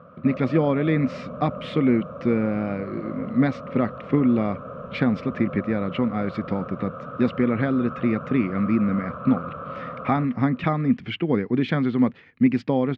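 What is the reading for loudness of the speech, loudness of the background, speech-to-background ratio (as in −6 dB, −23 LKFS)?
−24.0 LKFS, −36.0 LKFS, 12.0 dB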